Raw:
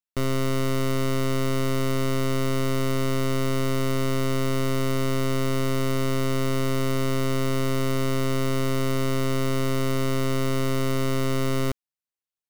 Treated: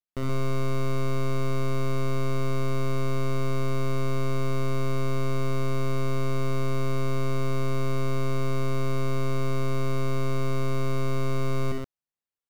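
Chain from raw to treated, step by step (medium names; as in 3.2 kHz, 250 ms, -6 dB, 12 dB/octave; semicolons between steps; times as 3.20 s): treble shelf 2.4 kHz -8.5 dB; in parallel at -4 dB: overload inside the chain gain 35 dB; on the sum: multi-tap echo 61/84/126 ms -5.5/-12/-3.5 dB; trim -6 dB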